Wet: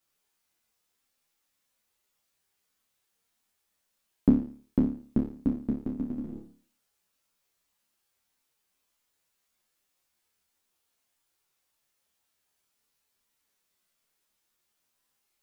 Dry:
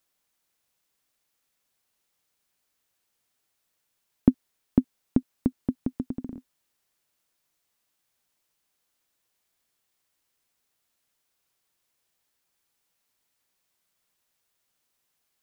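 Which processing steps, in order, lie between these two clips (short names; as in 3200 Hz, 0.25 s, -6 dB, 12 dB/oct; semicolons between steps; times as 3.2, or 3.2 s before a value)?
flutter echo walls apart 4.8 m, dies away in 0.45 s; ensemble effect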